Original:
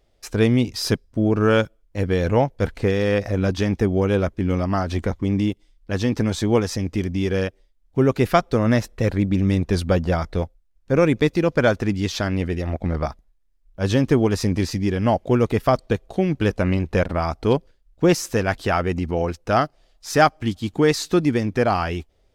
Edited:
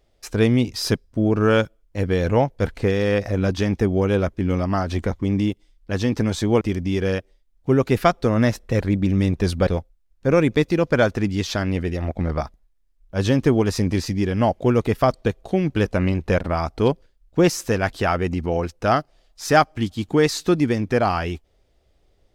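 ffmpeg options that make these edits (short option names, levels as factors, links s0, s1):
-filter_complex "[0:a]asplit=3[s0][s1][s2];[s0]atrim=end=6.612[s3];[s1]atrim=start=6.898:end=9.962[s4];[s2]atrim=start=10.318[s5];[s3][s4]acrossfade=d=0.004:c1=hsin:c2=hsin[s6];[s6][s5]acrossfade=d=0.004:c1=hsin:c2=hsin"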